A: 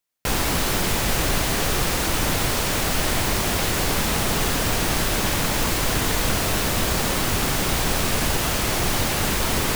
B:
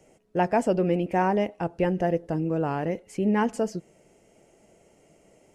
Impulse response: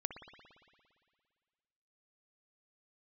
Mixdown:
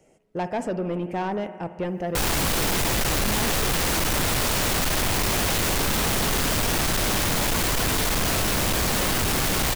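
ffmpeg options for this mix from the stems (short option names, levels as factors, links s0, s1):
-filter_complex "[0:a]adelay=1900,volume=1.19[s0];[1:a]volume=0.282,asplit=2[s1][s2];[s2]volume=0.668[s3];[2:a]atrim=start_sample=2205[s4];[s3][s4]afir=irnorm=-1:irlink=0[s5];[s0][s1][s5]amix=inputs=3:normalize=0,acontrast=51,asoftclip=type=tanh:threshold=0.0891"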